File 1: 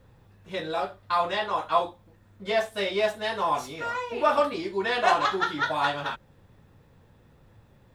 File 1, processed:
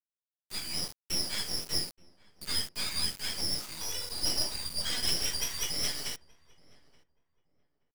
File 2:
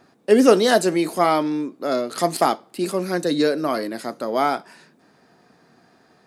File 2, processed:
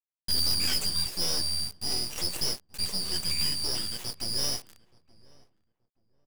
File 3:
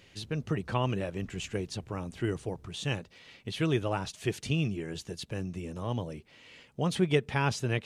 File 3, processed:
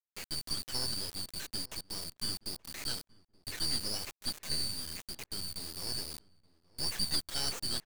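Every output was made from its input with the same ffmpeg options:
-filter_complex "[0:a]afftfilt=real='real(if(lt(b,272),68*(eq(floor(b/68),0)*3+eq(floor(b/68),1)*2+eq(floor(b/68),2)*1+eq(floor(b/68),3)*0)+mod(b,68),b),0)':imag='imag(if(lt(b,272),68*(eq(floor(b/68),0)*3+eq(floor(b/68),1)*2+eq(floor(b/68),2)*1+eq(floor(b/68),3)*0)+mod(b,68),b),0)':win_size=2048:overlap=0.75,highpass=110,adynamicequalizer=threshold=0.001:dfrequency=700:dqfactor=5.7:tfrequency=700:tqfactor=5.7:attack=5:release=100:ratio=0.375:range=1.5:mode=cutabove:tftype=bell,asoftclip=type=tanh:threshold=0.126,flanger=delay=1.8:depth=5:regen=-44:speed=1.7:shape=triangular,acrusher=bits=4:dc=4:mix=0:aa=0.000001,asplit=2[s0][s1];[s1]adelay=876,lowpass=f=1300:p=1,volume=0.0841,asplit=2[s2][s3];[s3]adelay=876,lowpass=f=1300:p=1,volume=0.22[s4];[s2][s4]amix=inputs=2:normalize=0[s5];[s0][s5]amix=inputs=2:normalize=0,volume=1.33"

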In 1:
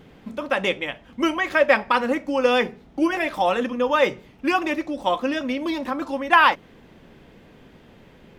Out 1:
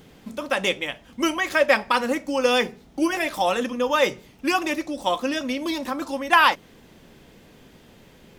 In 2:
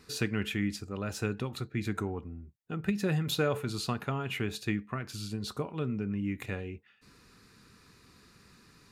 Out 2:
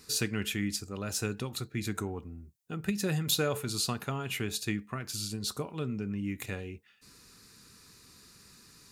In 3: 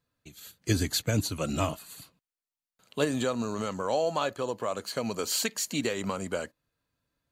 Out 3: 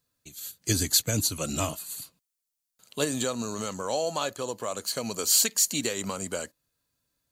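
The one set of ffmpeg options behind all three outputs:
-af "bass=f=250:g=0,treble=f=4000:g=12,volume=0.841"

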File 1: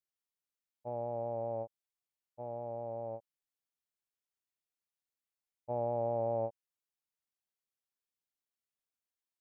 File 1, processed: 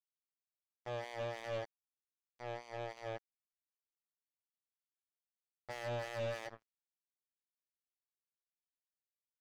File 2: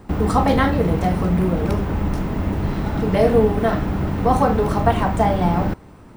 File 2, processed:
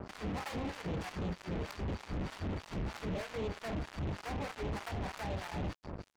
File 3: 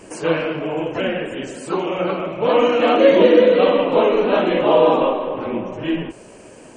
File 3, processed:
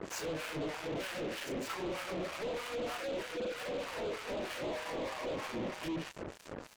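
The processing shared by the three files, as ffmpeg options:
-filter_complex "[0:a]acompressor=threshold=0.0447:ratio=10,asubboost=boost=3:cutoff=87,aresample=16000,aresample=44100,highpass=59,asplit=2[s0][s1];[s1]adelay=163,lowpass=f=3400:p=1,volume=0.158,asplit=2[s2][s3];[s3]adelay=163,lowpass=f=3400:p=1,volume=0.52,asplit=2[s4][s5];[s5]adelay=163,lowpass=f=3400:p=1,volume=0.52,asplit=2[s6][s7];[s7]adelay=163,lowpass=f=3400:p=1,volume=0.52,asplit=2[s8][s9];[s9]adelay=163,lowpass=f=3400:p=1,volume=0.52[s10];[s2][s4][s6][s8][s10]amix=inputs=5:normalize=0[s11];[s0][s11]amix=inputs=2:normalize=0,volume=53.1,asoftclip=hard,volume=0.0188,aeval=exprs='val(0)+0.000794*sin(2*PI*4600*n/s)':c=same,acrossover=split=780[s12][s13];[s12]aeval=exprs='val(0)*(1-1/2+1/2*cos(2*PI*3.2*n/s))':c=same[s14];[s13]aeval=exprs='val(0)*(1-1/2-1/2*cos(2*PI*3.2*n/s))':c=same[s15];[s14][s15]amix=inputs=2:normalize=0,acrusher=bits=6:mix=0:aa=0.5,volume=1.26"

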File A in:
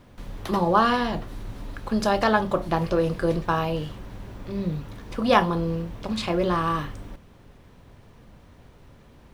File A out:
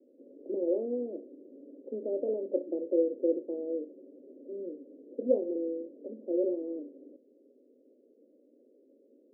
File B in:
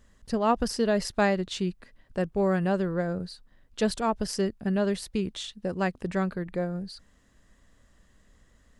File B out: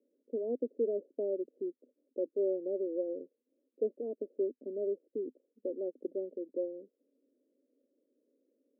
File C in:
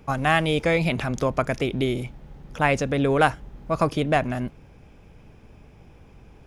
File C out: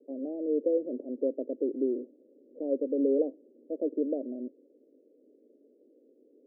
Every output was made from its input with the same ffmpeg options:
-af "asuperpass=centerf=380:order=12:qfactor=1.2,volume=0.708"

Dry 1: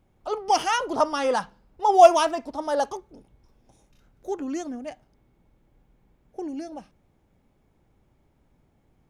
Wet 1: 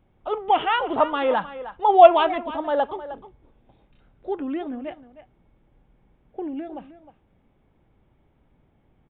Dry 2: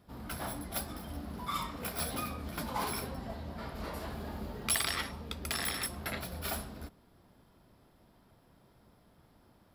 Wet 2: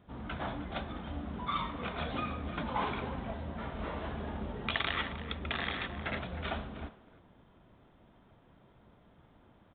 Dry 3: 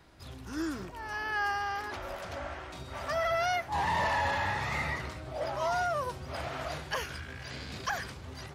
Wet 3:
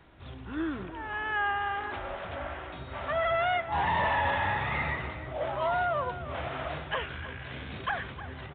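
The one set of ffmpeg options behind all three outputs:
-filter_complex "[0:a]asplit=2[s0][s1];[s1]adelay=310,highpass=300,lowpass=3400,asoftclip=type=hard:threshold=0.251,volume=0.224[s2];[s0][s2]amix=inputs=2:normalize=0,aresample=8000,aresample=44100,volume=1.26"

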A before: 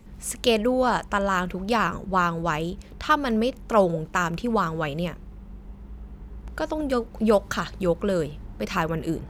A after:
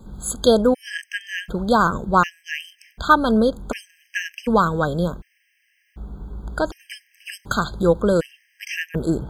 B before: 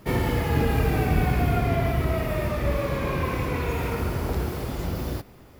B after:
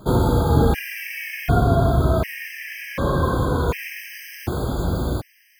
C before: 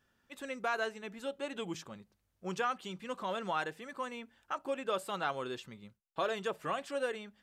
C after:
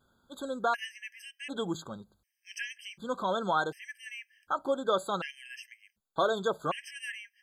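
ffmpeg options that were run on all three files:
-af "afftfilt=real='re*gt(sin(2*PI*0.67*pts/sr)*(1-2*mod(floor(b*sr/1024/1600),2)),0)':imag='im*gt(sin(2*PI*0.67*pts/sr)*(1-2*mod(floor(b*sr/1024/1600),2)),0)':win_size=1024:overlap=0.75,volume=2.11"

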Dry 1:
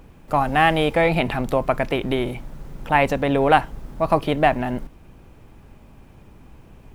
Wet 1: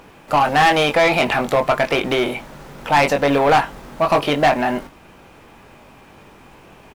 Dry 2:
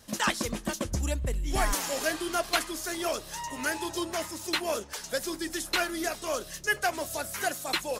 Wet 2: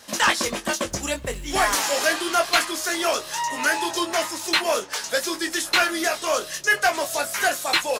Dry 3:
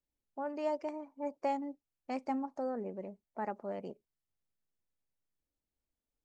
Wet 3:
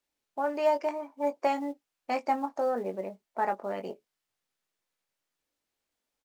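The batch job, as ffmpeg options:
-filter_complex "[0:a]asplit=2[s0][s1];[s1]adelay=21,volume=0.447[s2];[s0][s2]amix=inputs=2:normalize=0,acrusher=bits=9:mode=log:mix=0:aa=0.000001,asplit=2[s3][s4];[s4]highpass=f=720:p=1,volume=12.6,asoftclip=type=tanh:threshold=0.944[s5];[s3][s5]amix=inputs=2:normalize=0,lowpass=f=5800:p=1,volume=0.501,volume=0.562"

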